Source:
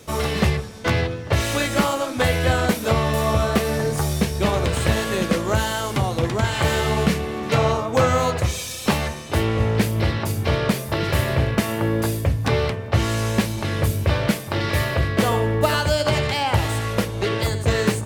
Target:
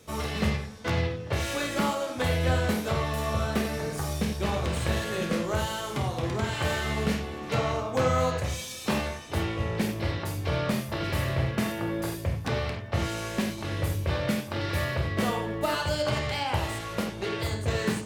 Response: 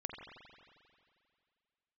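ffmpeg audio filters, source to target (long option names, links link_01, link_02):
-filter_complex "[1:a]atrim=start_sample=2205,afade=type=out:start_time=0.24:duration=0.01,atrim=end_sample=11025,asetrate=83790,aresample=44100[link_01];[0:a][link_01]afir=irnorm=-1:irlink=0"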